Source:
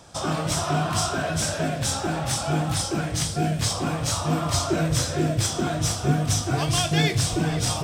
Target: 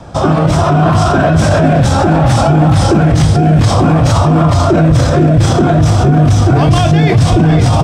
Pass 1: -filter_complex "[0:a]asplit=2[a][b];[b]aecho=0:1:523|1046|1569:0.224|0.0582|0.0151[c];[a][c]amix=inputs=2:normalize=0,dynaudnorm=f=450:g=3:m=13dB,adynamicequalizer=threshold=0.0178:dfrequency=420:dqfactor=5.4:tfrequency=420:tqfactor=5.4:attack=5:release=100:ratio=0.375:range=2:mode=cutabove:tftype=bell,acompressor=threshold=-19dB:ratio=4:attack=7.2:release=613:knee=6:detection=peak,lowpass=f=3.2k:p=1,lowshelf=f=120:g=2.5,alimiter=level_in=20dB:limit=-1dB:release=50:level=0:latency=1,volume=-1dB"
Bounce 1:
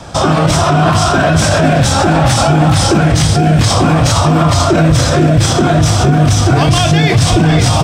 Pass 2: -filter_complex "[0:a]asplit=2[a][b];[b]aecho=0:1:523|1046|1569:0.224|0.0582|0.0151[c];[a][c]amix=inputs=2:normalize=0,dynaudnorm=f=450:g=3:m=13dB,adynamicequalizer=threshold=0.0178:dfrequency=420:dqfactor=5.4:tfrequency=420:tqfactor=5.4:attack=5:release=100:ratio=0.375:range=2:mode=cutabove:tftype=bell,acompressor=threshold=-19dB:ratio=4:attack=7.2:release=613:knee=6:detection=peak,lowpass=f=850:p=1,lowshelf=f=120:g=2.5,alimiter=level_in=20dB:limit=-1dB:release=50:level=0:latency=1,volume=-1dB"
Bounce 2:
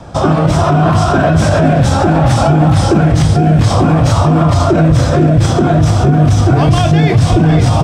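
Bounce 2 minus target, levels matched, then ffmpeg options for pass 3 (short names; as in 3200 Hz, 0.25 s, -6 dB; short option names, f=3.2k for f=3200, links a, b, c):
compressor: peak gain reduction +7 dB
-filter_complex "[0:a]asplit=2[a][b];[b]aecho=0:1:523|1046|1569:0.224|0.0582|0.0151[c];[a][c]amix=inputs=2:normalize=0,dynaudnorm=f=450:g=3:m=13dB,adynamicequalizer=threshold=0.0178:dfrequency=420:dqfactor=5.4:tfrequency=420:tqfactor=5.4:attack=5:release=100:ratio=0.375:range=2:mode=cutabove:tftype=bell,acompressor=threshold=-9.5dB:ratio=4:attack=7.2:release=613:knee=6:detection=peak,lowpass=f=850:p=1,lowshelf=f=120:g=2.5,alimiter=level_in=20dB:limit=-1dB:release=50:level=0:latency=1,volume=-1dB"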